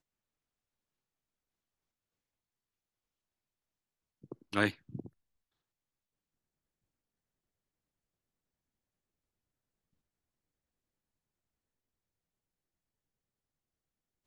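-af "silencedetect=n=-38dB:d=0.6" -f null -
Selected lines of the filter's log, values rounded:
silence_start: 0.00
silence_end: 4.32 | silence_duration: 4.32
silence_start: 5.06
silence_end: 14.27 | silence_duration: 9.20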